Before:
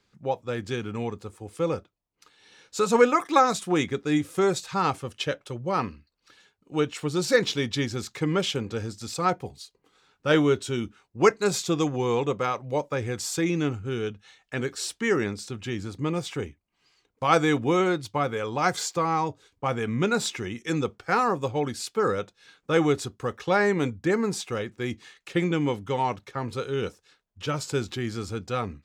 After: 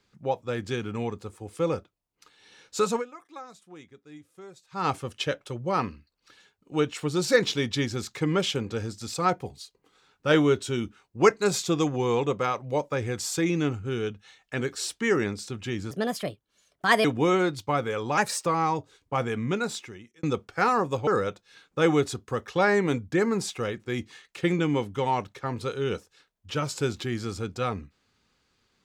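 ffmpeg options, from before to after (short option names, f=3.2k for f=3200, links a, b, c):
-filter_complex "[0:a]asplit=9[a][b][c][d][e][f][g][h][i];[a]atrim=end=3.04,asetpts=PTS-STARTPTS,afade=t=out:st=2.84:d=0.2:silence=0.0707946[j];[b]atrim=start=3.04:end=4.7,asetpts=PTS-STARTPTS,volume=-23dB[k];[c]atrim=start=4.7:end=15.914,asetpts=PTS-STARTPTS,afade=t=in:d=0.2:silence=0.0707946[l];[d]atrim=start=15.91:end=17.51,asetpts=PTS-STARTPTS,asetrate=62181,aresample=44100[m];[e]atrim=start=17.506:end=18.644[n];[f]atrim=start=18.64:end=18.97,asetpts=PTS-STARTPTS,asetrate=50715,aresample=44100[o];[g]atrim=start=18.966:end=20.74,asetpts=PTS-STARTPTS,afade=t=out:st=0.764:d=1.01[p];[h]atrim=start=20.74:end=21.582,asetpts=PTS-STARTPTS,afade=t=in:d=0.004:c=hsin[q];[i]atrim=start=21.988[r];[j][k][l]concat=n=3:v=0:a=1[s];[s][m]acrossfade=d=0.004:c1=hsin:c2=hsin[t];[t][n]acrossfade=d=0.004:c1=hsin:c2=hsin[u];[u][o]acrossfade=d=0.004:c1=hsin:c2=hsin[v];[p][q]concat=n=2:v=0:a=1[w];[v][w]acrossfade=d=0.004:c1=hsin:c2=hsin[x];[x][r]acrossfade=d=0.004:c1=hsin:c2=hsin"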